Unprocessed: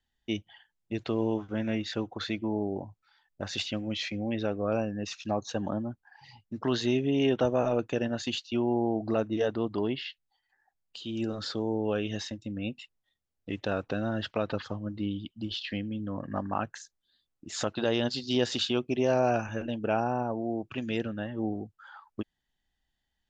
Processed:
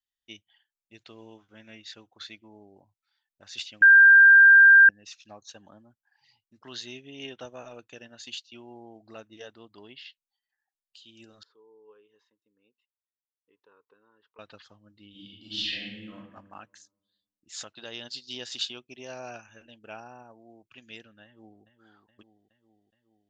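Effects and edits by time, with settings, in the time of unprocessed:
0:03.82–0:04.89: beep over 1,590 Hz −10 dBFS
0:11.43–0:14.39: pair of resonant band-passes 660 Hz, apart 1.2 octaves
0:15.10–0:16.14: thrown reverb, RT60 1.3 s, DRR −8.5 dB
0:21.24–0:21.64: delay throw 420 ms, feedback 70%, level −8.5 dB
whole clip: tilt shelving filter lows −8.5 dB, about 1,300 Hz; expander for the loud parts 1.5 to 1, over −39 dBFS; level −1.5 dB

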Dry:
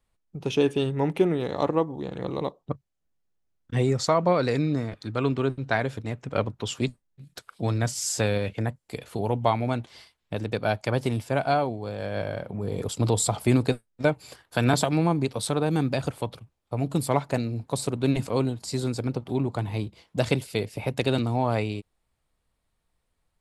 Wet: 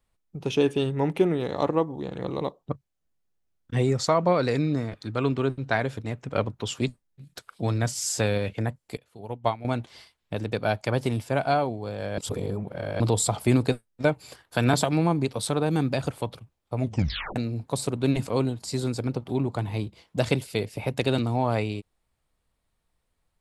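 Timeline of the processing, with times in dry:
0:08.97–0:09.65: expander for the loud parts 2.5 to 1, over −31 dBFS
0:12.18–0:13.00: reverse
0:16.79: tape stop 0.57 s

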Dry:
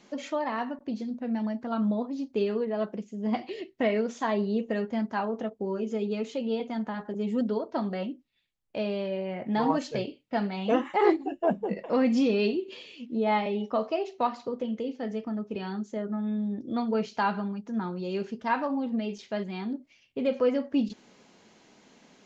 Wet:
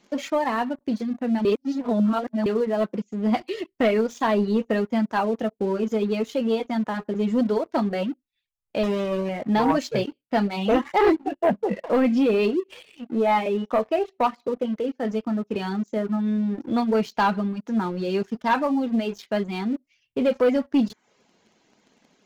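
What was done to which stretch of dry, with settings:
0:01.45–0:02.46: reverse
0:08.83–0:09.29: windowed peak hold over 17 samples
0:11.15–0:15.05: bass and treble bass −4 dB, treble −14 dB
whole clip: reverb reduction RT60 0.5 s; leveller curve on the samples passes 2

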